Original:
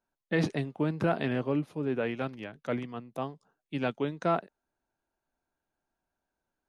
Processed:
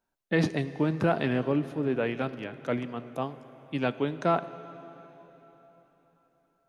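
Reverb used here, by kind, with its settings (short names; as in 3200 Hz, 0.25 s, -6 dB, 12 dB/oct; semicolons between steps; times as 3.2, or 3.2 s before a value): plate-style reverb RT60 4.1 s, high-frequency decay 0.9×, DRR 13.5 dB; gain +2.5 dB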